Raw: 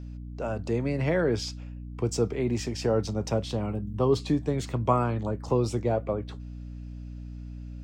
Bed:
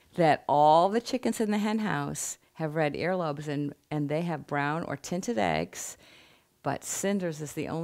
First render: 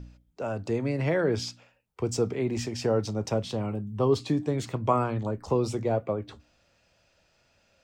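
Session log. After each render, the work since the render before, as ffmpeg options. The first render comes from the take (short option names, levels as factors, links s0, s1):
-af "bandreject=f=60:t=h:w=4,bandreject=f=120:t=h:w=4,bandreject=f=180:t=h:w=4,bandreject=f=240:t=h:w=4,bandreject=f=300:t=h:w=4"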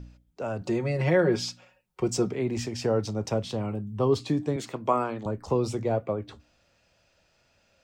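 -filter_complex "[0:a]asettb=1/sr,asplit=3[s0][s1][s2];[s0]atrim=end=0.614[s3];[s1]atrim=start=0.61:end=2.3,asetpts=PTS-STARTPTS,afade=t=in:d=0.004:c=qsin,afade=t=out:st=1.686:d=0.004:c=qsin,aecho=1:1:5.5:0.87,atrim=end_sample=74529[s4];[s2]atrim=start=2.296[s5];[s3][s4]acrossfade=d=0.004:c1=hsin:c2=qsin[s6];[s6][s5]acrossfade=d=0.004:c1=qsin:c2=hsin,asettb=1/sr,asplit=3[s7][s8][s9];[s7]atrim=end=4.564[s10];[s8]atrim=start=4.56:end=5.26,asetpts=PTS-STARTPTS,afade=t=in:d=0.004:c=qsin,afade=t=out:st=0.696:d=0.004:c=qsin,highpass=220[s11];[s9]atrim=start=5.256[s12];[s10][s11]acrossfade=d=0.004:c1=hsin:c2=qsin[s13];[s13][s12]acrossfade=d=0.004:c1=qsin:c2=hsin"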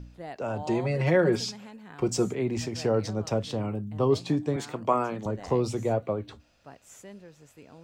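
-filter_complex "[1:a]volume=0.133[s0];[0:a][s0]amix=inputs=2:normalize=0"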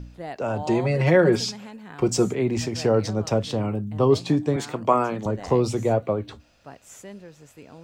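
-af "volume=1.78"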